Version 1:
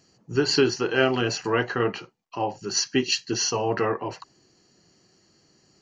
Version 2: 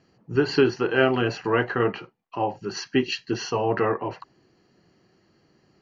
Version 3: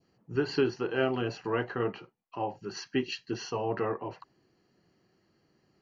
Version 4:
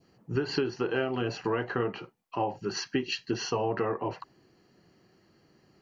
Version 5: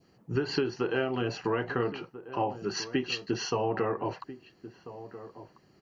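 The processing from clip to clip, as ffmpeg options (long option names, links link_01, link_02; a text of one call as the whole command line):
ffmpeg -i in.wav -af "lowpass=2700,volume=1.5dB" out.wav
ffmpeg -i in.wav -af "adynamicequalizer=threshold=0.01:dfrequency=1800:dqfactor=1.3:tfrequency=1800:tqfactor=1.3:attack=5:release=100:ratio=0.375:range=2.5:mode=cutabove:tftype=bell,volume=-7.5dB" out.wav
ffmpeg -i in.wav -af "acompressor=threshold=-31dB:ratio=10,volume=6.5dB" out.wav
ffmpeg -i in.wav -filter_complex "[0:a]asplit=2[link_01][link_02];[link_02]adelay=1341,volume=-14dB,highshelf=frequency=4000:gain=-30.2[link_03];[link_01][link_03]amix=inputs=2:normalize=0" out.wav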